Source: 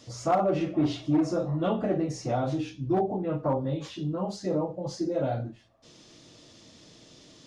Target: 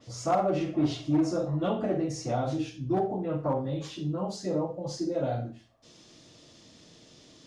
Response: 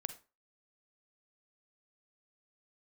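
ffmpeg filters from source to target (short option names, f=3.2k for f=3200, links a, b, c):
-filter_complex "[1:a]atrim=start_sample=2205[a];[0:a][a]afir=irnorm=-1:irlink=0,adynamicequalizer=threshold=0.00251:dfrequency=3900:dqfactor=0.7:tfrequency=3900:tqfactor=0.7:attack=5:release=100:ratio=0.375:range=2:mode=boostabove:tftype=highshelf"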